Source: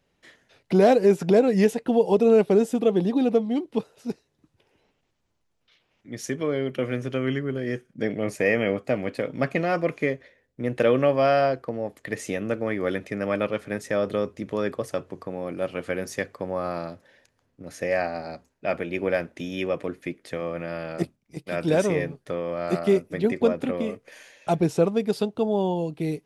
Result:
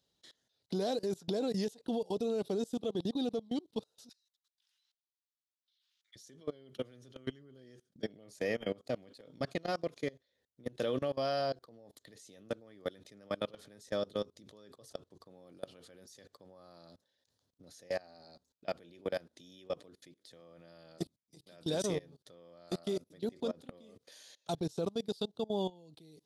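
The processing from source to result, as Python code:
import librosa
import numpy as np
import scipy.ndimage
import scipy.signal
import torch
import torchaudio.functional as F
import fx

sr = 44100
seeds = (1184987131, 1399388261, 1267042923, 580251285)

y = fx.highpass(x, sr, hz=1400.0, slope=24, at=(4.09, 6.16))
y = scipy.signal.sosfilt(scipy.signal.butter(2, 43.0, 'highpass', fs=sr, output='sos'), y)
y = fx.high_shelf_res(y, sr, hz=3000.0, db=8.0, q=3.0)
y = fx.level_steps(y, sr, step_db=24)
y = F.gain(torch.from_numpy(y), -8.5).numpy()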